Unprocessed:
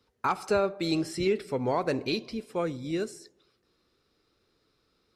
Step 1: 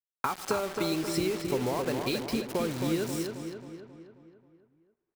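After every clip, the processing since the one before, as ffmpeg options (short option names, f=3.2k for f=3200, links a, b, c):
-filter_complex "[0:a]acompressor=threshold=-36dB:ratio=20,acrusher=bits=7:mix=0:aa=0.000001,asplit=2[a][b];[b]adelay=268,lowpass=f=3.3k:p=1,volume=-5dB,asplit=2[c][d];[d]adelay=268,lowpass=f=3.3k:p=1,volume=0.54,asplit=2[e][f];[f]adelay=268,lowpass=f=3.3k:p=1,volume=0.54,asplit=2[g][h];[h]adelay=268,lowpass=f=3.3k:p=1,volume=0.54,asplit=2[i][j];[j]adelay=268,lowpass=f=3.3k:p=1,volume=0.54,asplit=2[k][l];[l]adelay=268,lowpass=f=3.3k:p=1,volume=0.54,asplit=2[m][n];[n]adelay=268,lowpass=f=3.3k:p=1,volume=0.54[o];[c][e][g][i][k][m][o]amix=inputs=7:normalize=0[p];[a][p]amix=inputs=2:normalize=0,volume=9dB"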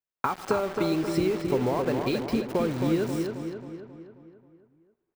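-af "equalizer=f=13k:t=o:w=2.7:g=-11.5,volume=4.5dB"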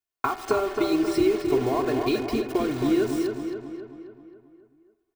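-af "aecho=1:1:2.8:0.88,bandreject=f=82.7:t=h:w=4,bandreject=f=165.4:t=h:w=4,bandreject=f=248.1:t=h:w=4,bandreject=f=330.8:t=h:w=4,bandreject=f=413.5:t=h:w=4,bandreject=f=496.2:t=h:w=4,bandreject=f=578.9:t=h:w=4,bandreject=f=661.6:t=h:w=4,bandreject=f=744.3:t=h:w=4,bandreject=f=827:t=h:w=4,bandreject=f=909.7:t=h:w=4,bandreject=f=992.4:t=h:w=4,bandreject=f=1.0751k:t=h:w=4,bandreject=f=1.1578k:t=h:w=4,bandreject=f=1.2405k:t=h:w=4,bandreject=f=1.3232k:t=h:w=4,bandreject=f=1.4059k:t=h:w=4,bandreject=f=1.4886k:t=h:w=4,bandreject=f=1.5713k:t=h:w=4,bandreject=f=1.654k:t=h:w=4,bandreject=f=1.7367k:t=h:w=4,bandreject=f=1.8194k:t=h:w=4,bandreject=f=1.9021k:t=h:w=4,bandreject=f=1.9848k:t=h:w=4,bandreject=f=2.0675k:t=h:w=4,bandreject=f=2.1502k:t=h:w=4,bandreject=f=2.2329k:t=h:w=4,bandreject=f=2.3156k:t=h:w=4,bandreject=f=2.3983k:t=h:w=4,bandreject=f=2.481k:t=h:w=4,bandreject=f=2.5637k:t=h:w=4,bandreject=f=2.6464k:t=h:w=4"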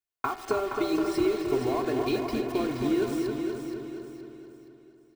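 -af "aecho=1:1:471|942|1413|1884:0.422|0.16|0.0609|0.0231,volume=-4dB"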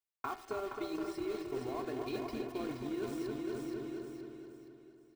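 -af "aeval=exprs='0.224*(cos(1*acos(clip(val(0)/0.224,-1,1)))-cos(1*PI/2))+0.00708*(cos(7*acos(clip(val(0)/0.224,-1,1)))-cos(7*PI/2))':c=same,areverse,acompressor=threshold=-34dB:ratio=6,areverse,volume=-1.5dB"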